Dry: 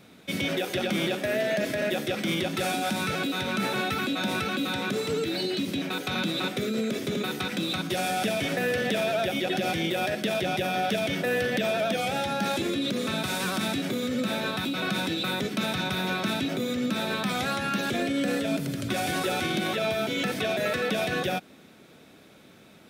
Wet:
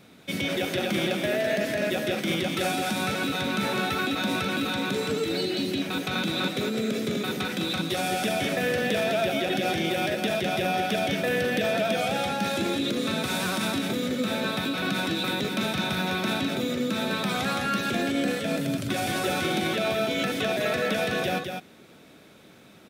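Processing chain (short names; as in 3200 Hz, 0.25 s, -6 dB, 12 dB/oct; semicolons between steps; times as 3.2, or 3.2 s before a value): echo 0.206 s -5.5 dB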